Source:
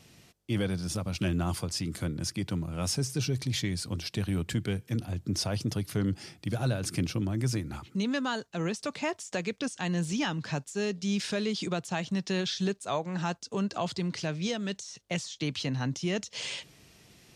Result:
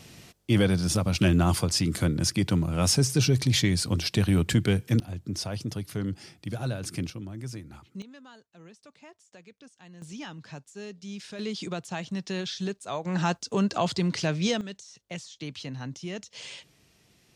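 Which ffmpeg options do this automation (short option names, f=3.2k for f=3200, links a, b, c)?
-af "asetnsamples=n=441:p=0,asendcmd='5 volume volume -2dB;7.1 volume volume -8dB;8.02 volume volume -19dB;10.02 volume volume -9.5dB;11.39 volume volume -2dB;13.05 volume volume 5.5dB;14.61 volume volume -5.5dB',volume=7.5dB"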